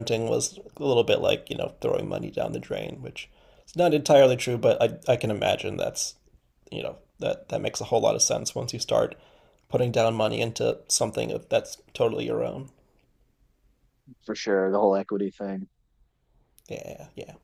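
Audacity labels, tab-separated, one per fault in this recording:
10.720000	10.720000	drop-out 3.6 ms

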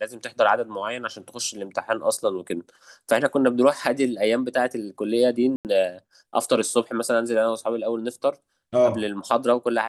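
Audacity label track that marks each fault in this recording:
5.560000	5.650000	drop-out 88 ms

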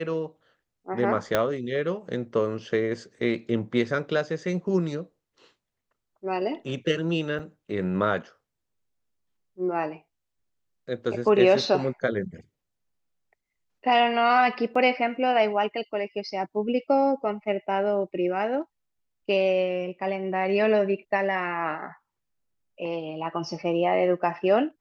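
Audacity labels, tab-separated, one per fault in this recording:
1.350000	1.350000	click −8 dBFS
7.390000	7.400000	drop-out 6.4 ms
14.750000	14.760000	drop-out 5 ms

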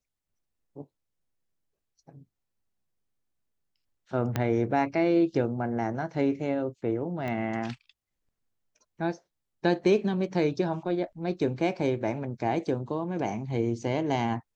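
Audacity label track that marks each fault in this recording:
4.360000	4.360000	click −13 dBFS
7.280000	7.280000	click −22 dBFS

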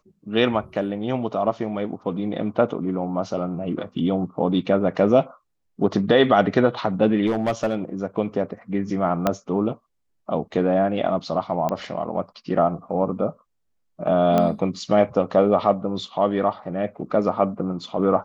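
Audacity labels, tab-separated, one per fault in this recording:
7.260000	7.760000	clipping −17.5 dBFS
9.270000	9.270000	click −6 dBFS
11.690000	11.690000	click −13 dBFS
14.380000	14.380000	click −9 dBFS

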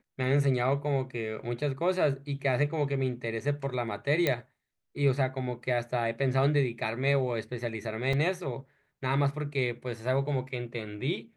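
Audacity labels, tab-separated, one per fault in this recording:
4.270000	4.270000	click −12 dBFS
8.130000	8.130000	drop-out 3.9 ms

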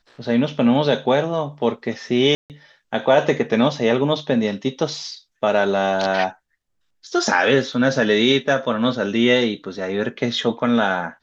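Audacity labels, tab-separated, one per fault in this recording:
2.350000	2.500000	drop-out 148 ms
7.730000	7.730000	drop-out 3.5 ms

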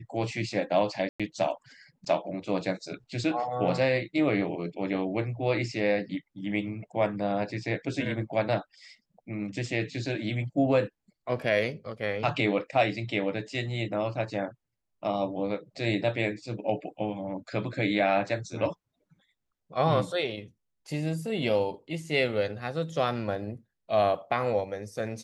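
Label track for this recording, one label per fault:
1.090000	1.200000	drop-out 106 ms

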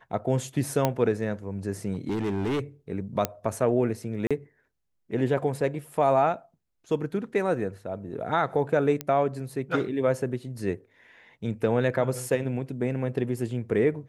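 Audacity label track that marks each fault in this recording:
0.850000	0.850000	click −9 dBFS
1.940000	2.600000	clipping −24 dBFS
3.250000	3.250000	click −9 dBFS
4.270000	4.310000	drop-out 36 ms
9.010000	9.010000	click −13 dBFS

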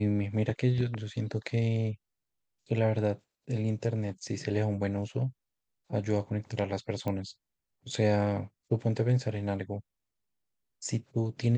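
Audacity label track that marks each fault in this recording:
7.080000	7.080000	click −21 dBFS

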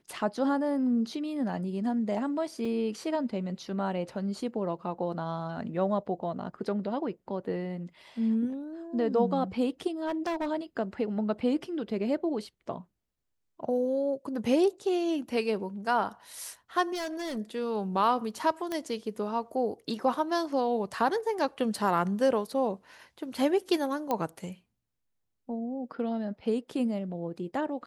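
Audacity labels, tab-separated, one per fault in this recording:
2.650000	2.650000	drop-out 4.1 ms
10.050000	10.490000	clipping −27.5 dBFS
16.930000	17.380000	clipping −31 dBFS
18.720000	18.720000	click −19 dBFS
24.110000	24.110000	click −16 dBFS

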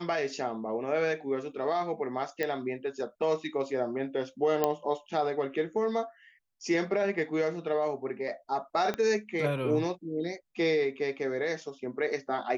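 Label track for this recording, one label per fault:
2.430000	2.430000	click −17 dBFS
4.640000	4.640000	click −12 dBFS
8.940000	8.940000	click −18 dBFS

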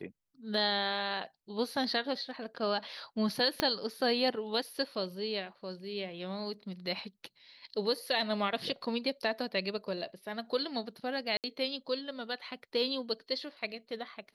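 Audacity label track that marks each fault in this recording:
3.600000	3.600000	click −12 dBFS
11.370000	11.440000	drop-out 68 ms

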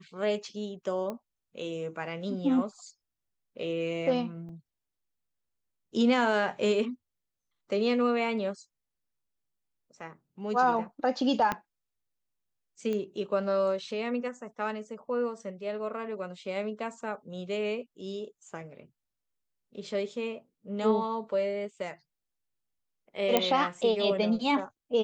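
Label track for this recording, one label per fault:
1.100000	1.100000	click −23 dBFS
4.490000	4.490000	drop-out 3.7 ms
11.520000	11.520000	click −15 dBFS
12.930000	12.930000	click −22 dBFS
23.370000	23.370000	click −8 dBFS

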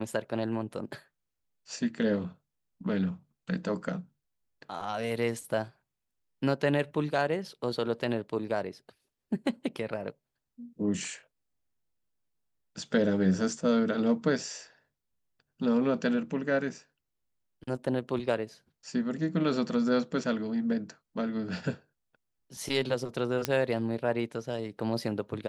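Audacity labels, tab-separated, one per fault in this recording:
23.450000	23.450000	click −11 dBFS

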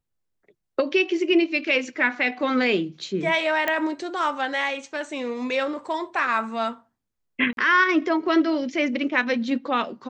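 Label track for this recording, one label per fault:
3.680000	3.680000	click −10 dBFS
7.530000	7.570000	drop-out 42 ms

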